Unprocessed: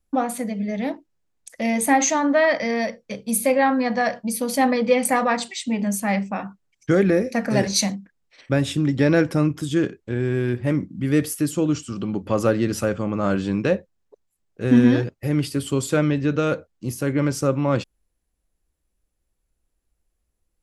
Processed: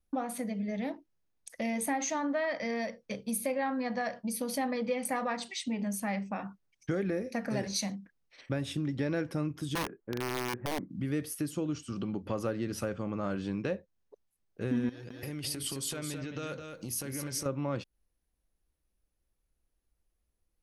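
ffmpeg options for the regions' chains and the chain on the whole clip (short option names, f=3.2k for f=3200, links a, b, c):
-filter_complex "[0:a]asettb=1/sr,asplit=3[a][b][c];[a]atrim=end=9.754[d];[b]atrim=start=9.75:end=10.9,asetpts=PTS-STARTPTS,afade=t=in:d=0.004:c=qsin,afade=t=out:st=1.146:d=0.004:c=qsin,lowpass=f=1.7k:w=0.5412,lowpass=f=1.7k:w=1.3066,equalizer=f=76:w=1.1:g=-13.5,aeval=exprs='(mod(7.5*val(0)+1,2)-1)/7.5':c=same[e];[c]atrim=start=10.896[f];[d][e]acrossfade=d=0.004:c1=hsin:c2=qsin[g];[g][f]acrossfade=d=0.004:c1=qsin:c2=hsin,asettb=1/sr,asplit=3[h][i][j];[h]atrim=end=14.894[k];[i]atrim=start=14.89:end=17.46,asetpts=PTS-STARTPTS,afade=t=in:d=0.004:c=qsin,afade=t=out:st=2.566:d=0.004:c=qsin,acompressor=threshold=-30dB:ratio=8:attack=3.2:release=140:knee=1:detection=peak,highshelf=f=2.5k:g=12,aecho=1:1:214:0.447,atrim=end_sample=113337[l];[j]atrim=start=17.456[m];[k][l]acrossfade=d=0.004:c1=hsin:c2=qsin[n];[n][m]acrossfade=d=0.004:c1=qsin:c2=hsin,bandreject=f=7.4k:w=6,acompressor=threshold=-28dB:ratio=2.5,volume=-5dB"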